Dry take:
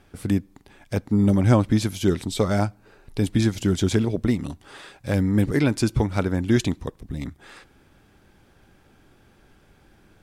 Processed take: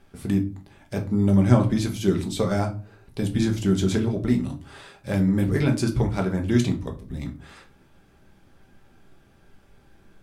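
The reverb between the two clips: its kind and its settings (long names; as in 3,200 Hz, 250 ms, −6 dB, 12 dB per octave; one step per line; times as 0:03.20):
rectangular room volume 190 cubic metres, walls furnished, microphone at 1.2 metres
level −4 dB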